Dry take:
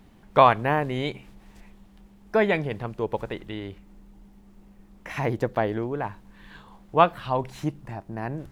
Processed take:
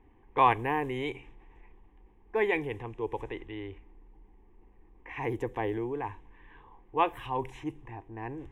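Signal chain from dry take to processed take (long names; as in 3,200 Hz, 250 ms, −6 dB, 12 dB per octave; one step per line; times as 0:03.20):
transient designer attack −3 dB, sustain +3 dB
low-pass that shuts in the quiet parts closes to 1,700 Hz, open at −22.5 dBFS
phaser with its sweep stopped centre 920 Hz, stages 8
level −2.5 dB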